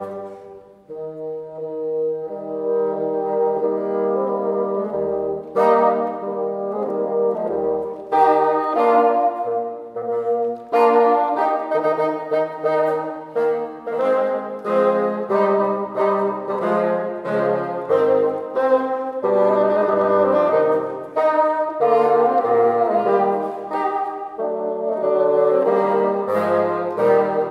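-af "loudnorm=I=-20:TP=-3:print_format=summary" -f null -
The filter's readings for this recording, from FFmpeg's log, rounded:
Input Integrated:    -19.4 LUFS
Input True Peak:      -3.2 dBTP
Input LRA:             2.9 LU
Input Threshold:     -29.6 LUFS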